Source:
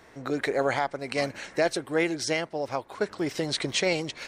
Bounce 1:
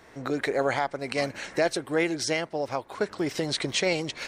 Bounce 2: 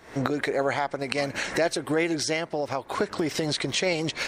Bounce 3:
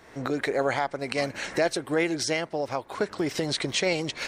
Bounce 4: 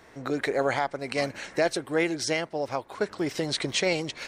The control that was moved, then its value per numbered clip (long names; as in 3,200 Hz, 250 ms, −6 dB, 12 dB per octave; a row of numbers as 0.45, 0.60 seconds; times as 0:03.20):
camcorder AGC, rising by: 13, 82, 33, 5.1 dB per second